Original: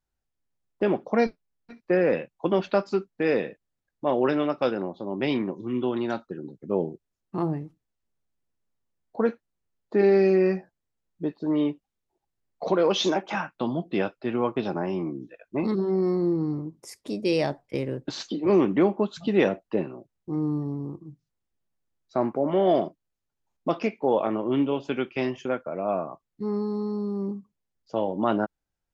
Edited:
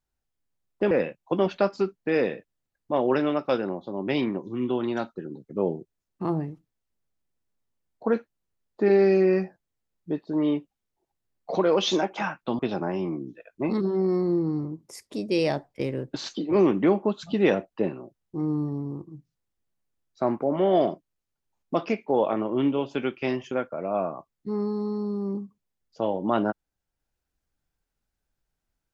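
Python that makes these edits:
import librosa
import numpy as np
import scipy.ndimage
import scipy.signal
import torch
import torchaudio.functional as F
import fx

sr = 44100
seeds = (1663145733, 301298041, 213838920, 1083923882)

y = fx.edit(x, sr, fx.cut(start_s=0.91, length_s=1.13),
    fx.cut(start_s=13.72, length_s=0.81), tone=tone)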